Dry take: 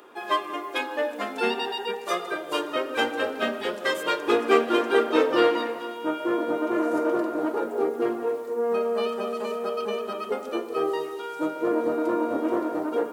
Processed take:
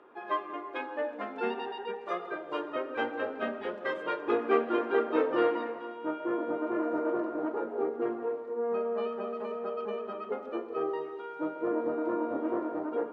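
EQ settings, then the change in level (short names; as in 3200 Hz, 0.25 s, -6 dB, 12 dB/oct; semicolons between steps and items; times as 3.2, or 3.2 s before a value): LPF 1900 Hz 12 dB/oct; -6.0 dB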